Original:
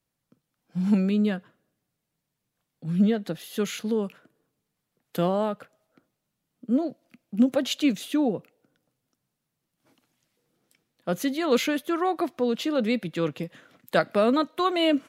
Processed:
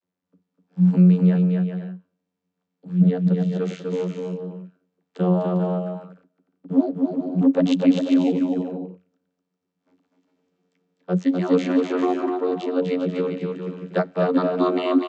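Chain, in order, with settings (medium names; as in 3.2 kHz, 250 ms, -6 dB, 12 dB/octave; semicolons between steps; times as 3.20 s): 5.52–7.74 s: waveshaping leveller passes 1; vocoder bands 32, saw 90.5 Hz; bouncing-ball echo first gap 250 ms, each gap 0.6×, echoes 5; trim +4 dB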